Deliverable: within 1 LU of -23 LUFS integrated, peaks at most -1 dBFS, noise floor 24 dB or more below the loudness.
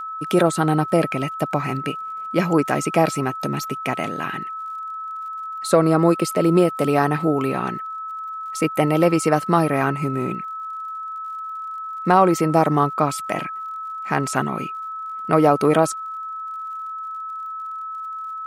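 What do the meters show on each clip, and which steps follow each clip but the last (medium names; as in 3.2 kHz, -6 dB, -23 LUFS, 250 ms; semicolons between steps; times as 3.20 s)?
tick rate 56 per s; steady tone 1.3 kHz; tone level -28 dBFS; loudness -22.0 LUFS; peak level -2.5 dBFS; loudness target -23.0 LUFS
-> de-click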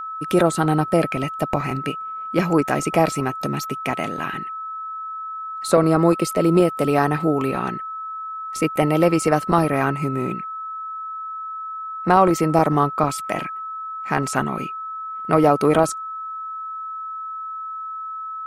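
tick rate 0.43 per s; steady tone 1.3 kHz; tone level -28 dBFS
-> band-stop 1.3 kHz, Q 30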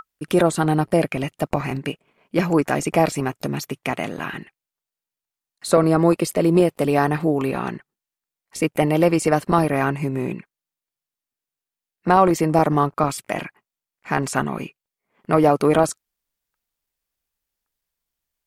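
steady tone not found; loudness -20.5 LUFS; peak level -3.0 dBFS; loudness target -23.0 LUFS
-> trim -2.5 dB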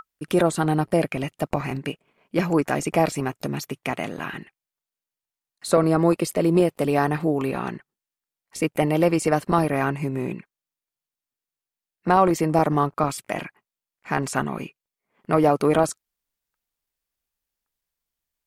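loudness -23.0 LUFS; peak level -5.5 dBFS; noise floor -90 dBFS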